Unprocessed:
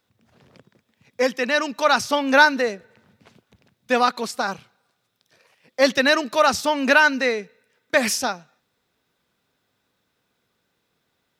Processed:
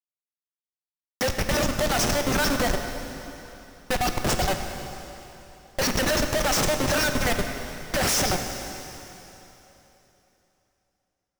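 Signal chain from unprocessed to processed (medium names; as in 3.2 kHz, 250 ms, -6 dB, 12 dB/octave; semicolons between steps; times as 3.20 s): static phaser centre 690 Hz, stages 8; LFO high-pass square 8.6 Hz 550–5500 Hz; Schmitt trigger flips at -32 dBFS; plate-style reverb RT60 3.3 s, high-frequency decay 0.95×, DRR 5 dB; trim +2 dB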